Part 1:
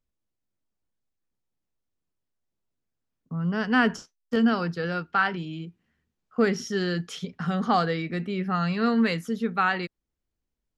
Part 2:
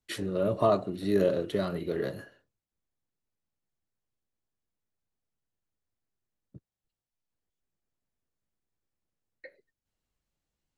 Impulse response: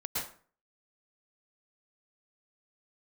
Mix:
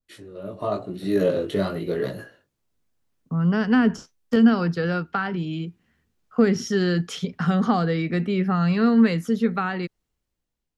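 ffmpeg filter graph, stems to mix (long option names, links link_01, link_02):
-filter_complex "[0:a]acrossover=split=380[link_01][link_02];[link_02]acompressor=threshold=-32dB:ratio=3[link_03];[link_01][link_03]amix=inputs=2:normalize=0,adynamicequalizer=threshold=0.00631:dfrequency=1600:dqfactor=0.7:tfrequency=1600:tqfactor=0.7:attack=5:release=100:ratio=0.375:range=1.5:mode=cutabove:tftype=highshelf,volume=-2.5dB[link_04];[1:a]dynaudnorm=framelen=410:gausssize=3:maxgain=6dB,flanger=delay=16:depth=4.7:speed=0.96,volume=-6.5dB[link_05];[link_04][link_05]amix=inputs=2:normalize=0,dynaudnorm=framelen=170:gausssize=11:maxgain=9dB"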